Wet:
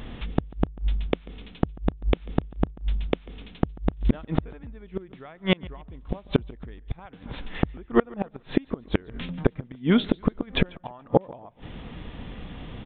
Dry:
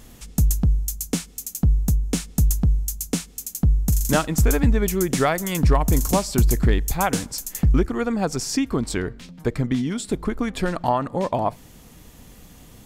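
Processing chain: resampled via 8 kHz; inverted gate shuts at -14 dBFS, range -32 dB; dynamic bell 510 Hz, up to +4 dB, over -46 dBFS, Q 1.2; modulated delay 142 ms, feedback 32%, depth 51 cents, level -23 dB; trim +8 dB

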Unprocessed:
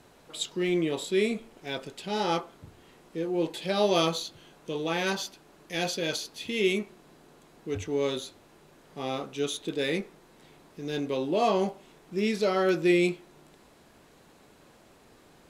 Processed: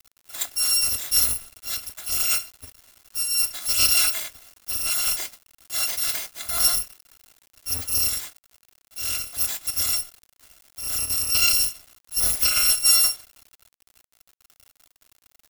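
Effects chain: bit-reversed sample order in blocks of 256 samples; word length cut 8-bit, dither none; trim +5 dB

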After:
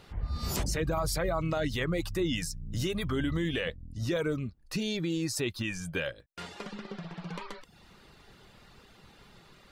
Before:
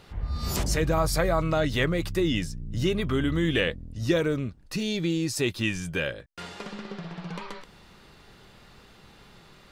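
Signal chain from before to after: reverb removal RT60 0.57 s; 2.33–3.09 s: treble shelf 4.2 kHz +10 dB; peak limiter -19.5 dBFS, peak gain reduction 7.5 dB; trim -2 dB

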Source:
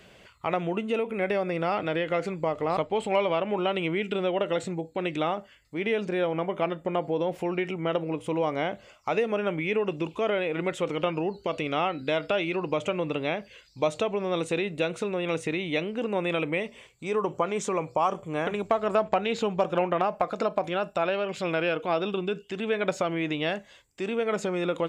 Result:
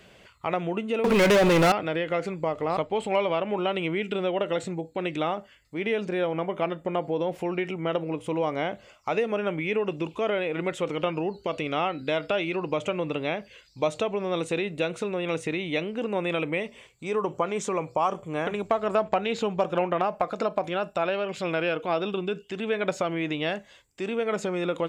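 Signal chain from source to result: 1.04–1.72 s: waveshaping leveller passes 5

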